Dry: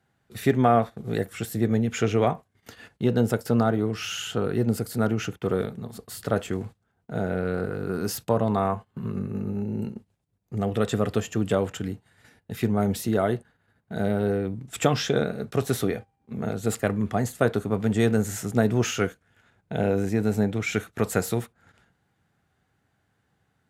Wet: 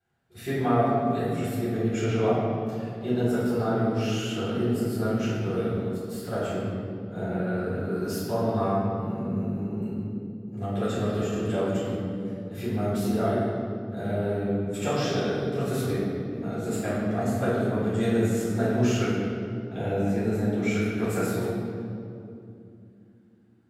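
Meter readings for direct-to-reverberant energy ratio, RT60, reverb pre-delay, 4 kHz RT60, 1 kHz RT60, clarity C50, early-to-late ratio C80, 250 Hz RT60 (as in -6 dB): -11.0 dB, 2.7 s, 3 ms, 1.6 s, 2.4 s, -2.0 dB, 0.5 dB, 4.1 s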